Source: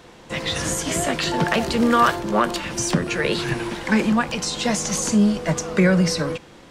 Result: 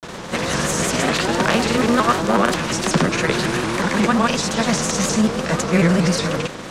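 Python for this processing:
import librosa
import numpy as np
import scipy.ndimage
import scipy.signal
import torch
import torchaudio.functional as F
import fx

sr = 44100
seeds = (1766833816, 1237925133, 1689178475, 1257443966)

y = fx.bin_compress(x, sr, power=0.6)
y = fx.granulator(y, sr, seeds[0], grain_ms=100.0, per_s=20.0, spray_ms=100.0, spread_st=0)
y = fx.vibrato_shape(y, sr, shape='saw_up', rate_hz=5.5, depth_cents=160.0)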